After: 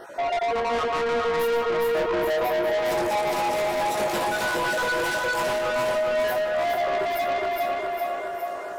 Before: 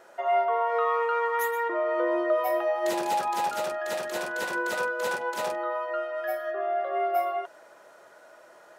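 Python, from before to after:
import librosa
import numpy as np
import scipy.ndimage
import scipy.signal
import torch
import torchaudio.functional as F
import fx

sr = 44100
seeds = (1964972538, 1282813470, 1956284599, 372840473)

p1 = fx.spec_dropout(x, sr, seeds[0], share_pct=35)
p2 = fx.low_shelf(p1, sr, hz=440.0, db=8.5)
p3 = fx.doubler(p2, sr, ms=19.0, db=-3.5)
p4 = fx.echo_feedback(p3, sr, ms=411, feedback_pct=57, wet_db=-4.0)
p5 = fx.rider(p4, sr, range_db=5, speed_s=0.5)
p6 = p4 + (p5 * librosa.db_to_amplitude(1.5))
p7 = 10.0 ** (-22.5 / 20.0) * np.tanh(p6 / 10.0 ** (-22.5 / 20.0))
y = p7 + 10.0 ** (-10.5 / 20.0) * np.pad(p7, (int(445 * sr / 1000.0), 0))[:len(p7)]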